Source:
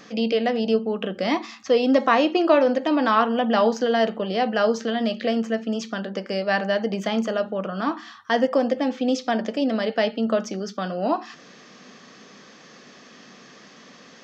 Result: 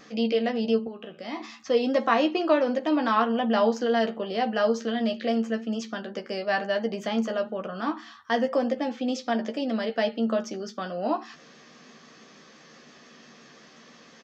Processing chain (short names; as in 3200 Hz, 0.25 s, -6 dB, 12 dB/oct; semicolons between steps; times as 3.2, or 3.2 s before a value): 0.87–1.4 resonator 83 Hz, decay 0.67 s, harmonics all, mix 70%; vibrato 5.9 Hz 23 cents; doubler 13 ms -6.5 dB; gain -5 dB